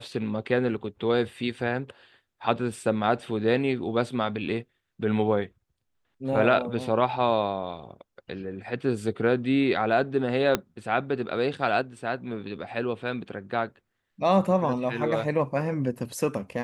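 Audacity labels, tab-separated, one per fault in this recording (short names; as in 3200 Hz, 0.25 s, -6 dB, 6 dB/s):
10.550000	10.550000	pop -8 dBFS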